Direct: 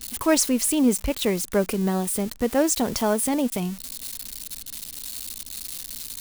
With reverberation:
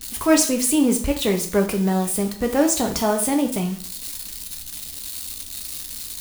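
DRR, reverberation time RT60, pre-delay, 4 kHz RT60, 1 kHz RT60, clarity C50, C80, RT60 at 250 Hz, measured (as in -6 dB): 3.0 dB, 0.50 s, 4 ms, 0.45 s, 0.45 s, 10.0 dB, 14.5 dB, 0.45 s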